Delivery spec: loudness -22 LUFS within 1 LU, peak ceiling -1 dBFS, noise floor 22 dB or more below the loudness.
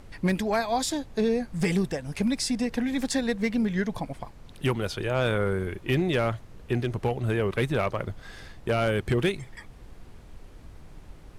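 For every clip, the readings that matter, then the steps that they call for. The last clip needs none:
clipped 0.5%; flat tops at -17.5 dBFS; noise floor -48 dBFS; noise floor target -50 dBFS; loudness -27.5 LUFS; peak -17.5 dBFS; loudness target -22.0 LUFS
-> clip repair -17.5 dBFS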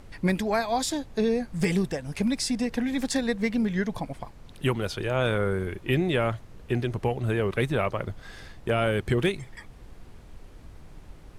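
clipped 0.0%; noise floor -48 dBFS; noise floor target -50 dBFS
-> noise print and reduce 6 dB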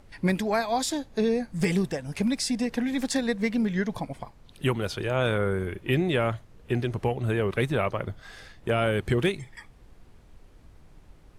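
noise floor -54 dBFS; loudness -27.5 LUFS; peak -11.5 dBFS; loudness target -22.0 LUFS
-> gain +5.5 dB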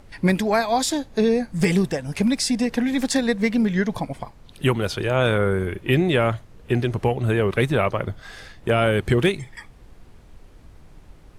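loudness -22.0 LUFS; peak -6.0 dBFS; noise floor -48 dBFS

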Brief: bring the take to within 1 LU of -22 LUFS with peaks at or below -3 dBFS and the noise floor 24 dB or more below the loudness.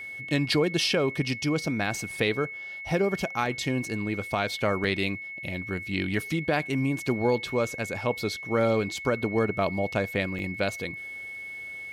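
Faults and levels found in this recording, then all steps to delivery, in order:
dropouts 3; longest dropout 1.4 ms; steady tone 2200 Hz; tone level -36 dBFS; loudness -28.0 LUFS; peak -12.5 dBFS; loudness target -22.0 LUFS
-> interpolate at 3.46/4.84/10.39, 1.4 ms; notch 2200 Hz, Q 30; gain +6 dB

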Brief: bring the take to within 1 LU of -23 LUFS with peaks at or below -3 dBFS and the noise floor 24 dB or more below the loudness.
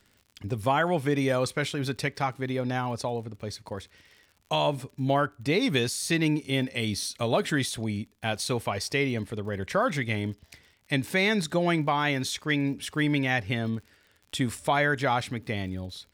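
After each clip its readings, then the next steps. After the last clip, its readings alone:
ticks 48/s; loudness -28.0 LUFS; peak -13.0 dBFS; loudness target -23.0 LUFS
-> de-click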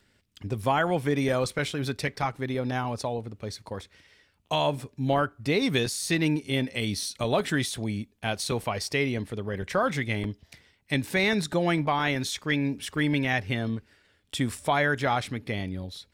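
ticks 0.31/s; loudness -28.0 LUFS; peak -13.0 dBFS; loudness target -23.0 LUFS
-> gain +5 dB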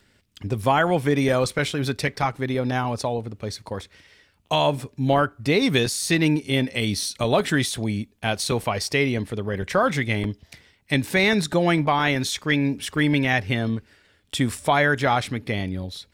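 loudness -23.0 LUFS; peak -8.0 dBFS; noise floor -62 dBFS

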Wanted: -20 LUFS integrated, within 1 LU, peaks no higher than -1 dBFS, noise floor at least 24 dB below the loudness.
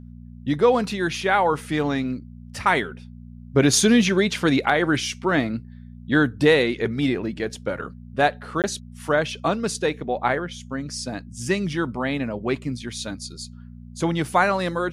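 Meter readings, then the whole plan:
dropouts 1; longest dropout 18 ms; hum 60 Hz; harmonics up to 240 Hz; hum level -38 dBFS; loudness -22.5 LUFS; peak -6.0 dBFS; loudness target -20.0 LUFS
-> interpolate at 8.62, 18 ms; de-hum 60 Hz, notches 4; gain +2.5 dB

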